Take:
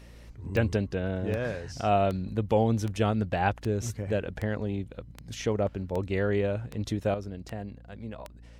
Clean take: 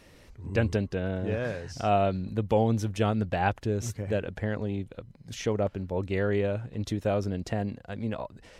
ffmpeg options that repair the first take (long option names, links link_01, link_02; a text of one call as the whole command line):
ffmpeg -i in.wav -af "adeclick=threshold=4,bandreject=frequency=57.6:width_type=h:width=4,bandreject=frequency=115.2:width_type=h:width=4,bandreject=frequency=172.8:width_type=h:width=4,bandreject=frequency=230.4:width_type=h:width=4,bandreject=frequency=288:width_type=h:width=4,asetnsamples=nb_out_samples=441:pad=0,asendcmd='7.14 volume volume 7.5dB',volume=0dB" out.wav